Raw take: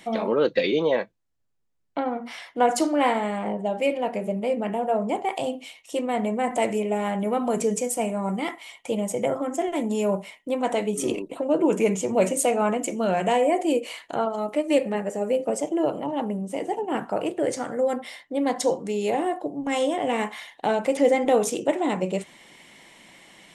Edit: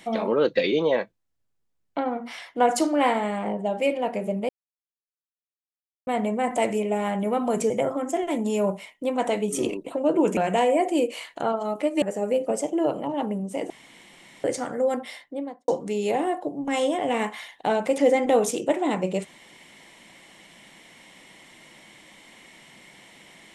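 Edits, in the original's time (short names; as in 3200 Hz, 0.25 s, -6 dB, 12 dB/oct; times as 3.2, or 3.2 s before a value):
4.49–6.07 mute
7.7–9.15 cut
11.82–13.1 cut
14.75–15.01 cut
16.69–17.43 room tone
18.11–18.67 studio fade out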